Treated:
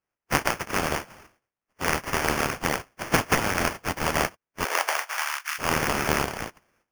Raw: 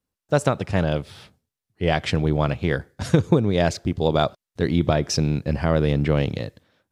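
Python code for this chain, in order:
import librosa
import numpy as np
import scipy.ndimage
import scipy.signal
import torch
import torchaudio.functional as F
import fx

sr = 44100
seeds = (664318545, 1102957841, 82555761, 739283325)

y = fx.spec_flatten(x, sr, power=0.16)
y = fx.sample_hold(y, sr, seeds[0], rate_hz=3900.0, jitter_pct=0)
y = fx.highpass(y, sr, hz=fx.line((4.63, 420.0), (5.58, 1400.0)), slope=24, at=(4.63, 5.58), fade=0.02)
y = y * 10.0 ** (-4.5 / 20.0)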